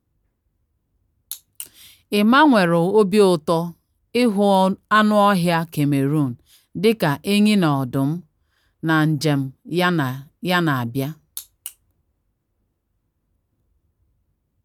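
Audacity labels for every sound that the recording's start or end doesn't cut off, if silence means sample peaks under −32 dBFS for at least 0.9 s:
1.310000	11.690000	sound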